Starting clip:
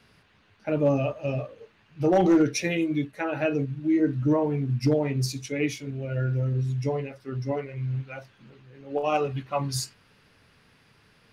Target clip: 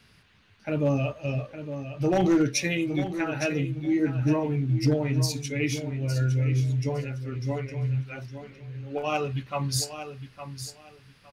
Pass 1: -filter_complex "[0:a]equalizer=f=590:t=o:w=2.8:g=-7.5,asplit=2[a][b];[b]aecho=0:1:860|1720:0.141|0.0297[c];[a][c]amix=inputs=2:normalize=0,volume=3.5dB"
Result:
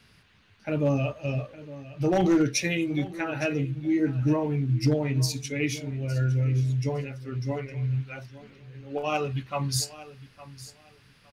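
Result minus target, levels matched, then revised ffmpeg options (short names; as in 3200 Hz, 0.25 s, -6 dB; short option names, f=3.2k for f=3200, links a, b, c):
echo-to-direct -6.5 dB
-filter_complex "[0:a]equalizer=f=590:t=o:w=2.8:g=-7.5,asplit=2[a][b];[b]aecho=0:1:860|1720|2580:0.299|0.0627|0.0132[c];[a][c]amix=inputs=2:normalize=0,volume=3.5dB"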